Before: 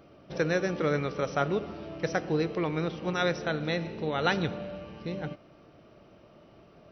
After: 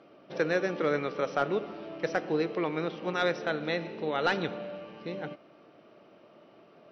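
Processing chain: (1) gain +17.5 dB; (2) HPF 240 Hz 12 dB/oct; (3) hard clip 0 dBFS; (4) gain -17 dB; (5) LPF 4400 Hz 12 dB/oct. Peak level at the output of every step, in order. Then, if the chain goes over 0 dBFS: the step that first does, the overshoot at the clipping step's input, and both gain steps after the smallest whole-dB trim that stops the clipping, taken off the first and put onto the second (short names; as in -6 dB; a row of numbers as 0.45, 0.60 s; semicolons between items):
+6.5, +7.0, 0.0, -17.0, -16.5 dBFS; step 1, 7.0 dB; step 1 +10.5 dB, step 4 -10 dB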